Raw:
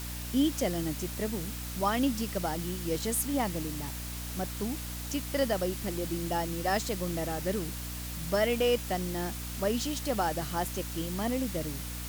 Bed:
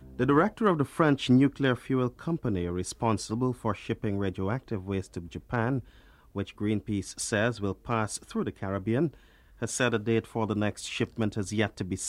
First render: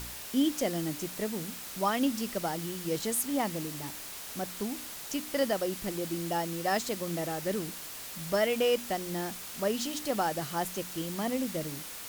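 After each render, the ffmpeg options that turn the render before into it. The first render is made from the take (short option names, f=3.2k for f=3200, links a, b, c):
-af "bandreject=f=60:t=h:w=4,bandreject=f=120:t=h:w=4,bandreject=f=180:t=h:w=4,bandreject=f=240:t=h:w=4,bandreject=f=300:t=h:w=4"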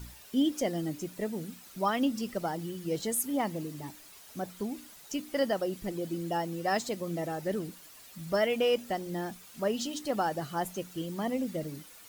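-af "afftdn=nr=12:nf=-42"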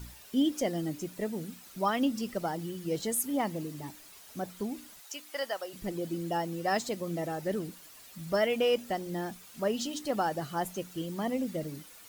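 -filter_complex "[0:a]asplit=3[a][b][c];[a]afade=t=out:st=5:d=0.02[d];[b]highpass=750,afade=t=in:st=5:d=0.02,afade=t=out:st=5.73:d=0.02[e];[c]afade=t=in:st=5.73:d=0.02[f];[d][e][f]amix=inputs=3:normalize=0"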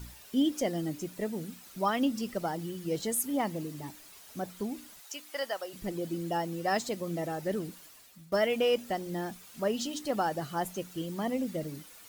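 -filter_complex "[0:a]asplit=2[a][b];[a]atrim=end=8.32,asetpts=PTS-STARTPTS,afade=t=out:st=7.82:d=0.5:silence=0.133352[c];[b]atrim=start=8.32,asetpts=PTS-STARTPTS,afade=t=in:d=0.004:c=hsin:silence=0.133352[d];[c][d]concat=n=2:v=0:a=1"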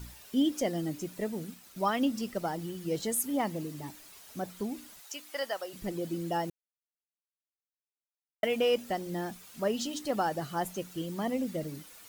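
-filter_complex "[0:a]asettb=1/sr,asplit=3[a][b][c];[a]atrim=end=1.284[d];[b]atrim=start=1.28:end=2.81,asetpts=PTS-STARTPTS,afade=t=in:d=0.004:c=qsin,afade=t=out:st=1.526:d=0.004:c=qsin,aeval=exprs='sgn(val(0))*max(abs(val(0))-0.00106,0)':c=same[e];[c]atrim=start=2.806[f];[d][e]acrossfade=d=0.004:c1=hsin:c2=qsin[g];[g][f]acrossfade=d=0.004:c1=qsin:c2=hsin,asplit=3[h][i][j];[h]atrim=end=6.5,asetpts=PTS-STARTPTS,afade=t=out:st=6.496:d=0.004:c=hsin[k];[i]atrim=start=6.5:end=8.43,asetpts=PTS-STARTPTS,volume=0[l];[j]atrim=start=8.43,asetpts=PTS-STARTPTS,afade=t=in:d=0.004:c=hsin[m];[k][l][m]concat=n=3:v=0:a=1"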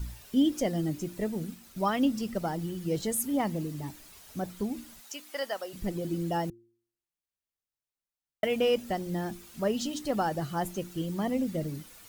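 -af "lowshelf=f=150:g=12,bandreject=f=115.7:t=h:w=4,bandreject=f=231.4:t=h:w=4,bandreject=f=347.1:t=h:w=4"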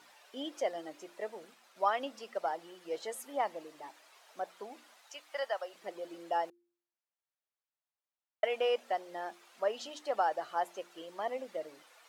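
-af "highpass=f=590:w=0.5412,highpass=f=590:w=1.3066,aemphasis=mode=reproduction:type=riaa"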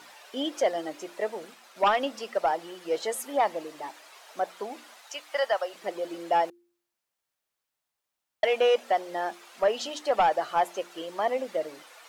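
-af "aeval=exprs='0.158*sin(PI/2*2*val(0)/0.158)':c=same"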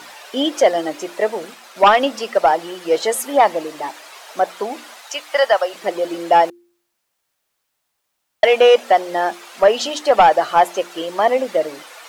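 -af "volume=11.5dB"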